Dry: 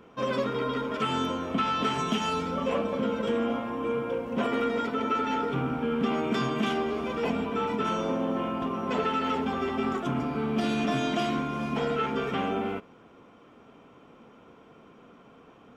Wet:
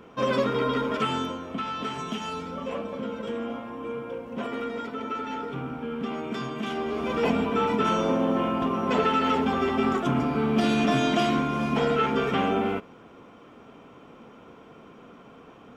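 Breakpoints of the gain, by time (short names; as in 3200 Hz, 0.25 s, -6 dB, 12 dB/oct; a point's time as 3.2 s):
0.93 s +4 dB
1.43 s -4.5 dB
6.62 s -4.5 dB
7.16 s +4.5 dB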